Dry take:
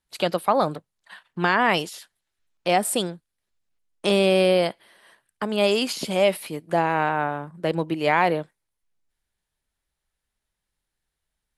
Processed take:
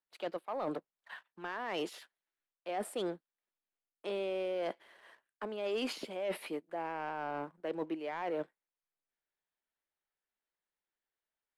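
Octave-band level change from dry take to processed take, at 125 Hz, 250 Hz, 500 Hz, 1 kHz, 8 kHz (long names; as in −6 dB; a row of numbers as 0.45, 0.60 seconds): −23.0, −15.0, −14.5, −17.0, −20.5 decibels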